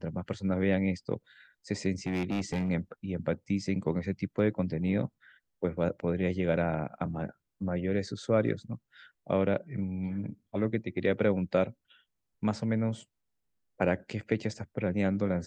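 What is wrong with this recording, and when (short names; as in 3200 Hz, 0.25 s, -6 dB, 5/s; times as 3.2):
2.07–2.7 clipped -26.5 dBFS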